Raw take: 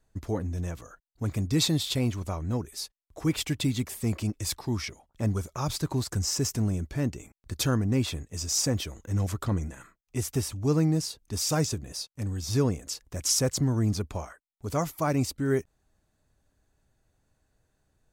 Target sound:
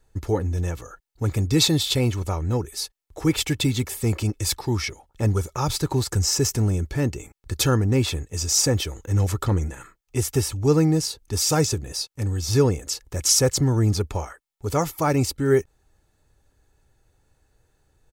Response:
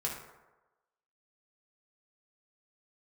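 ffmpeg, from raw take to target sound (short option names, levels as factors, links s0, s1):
-af "aecho=1:1:2.3:0.4,volume=2"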